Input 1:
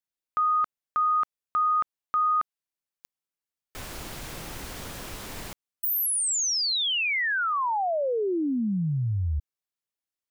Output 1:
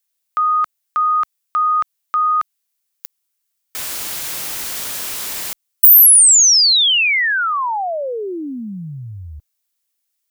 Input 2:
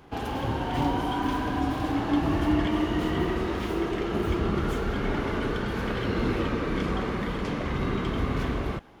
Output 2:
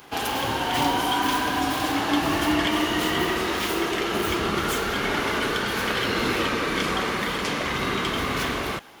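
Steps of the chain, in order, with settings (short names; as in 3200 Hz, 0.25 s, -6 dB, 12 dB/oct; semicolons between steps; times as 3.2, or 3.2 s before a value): tilt +3.5 dB/oct; gain +6.5 dB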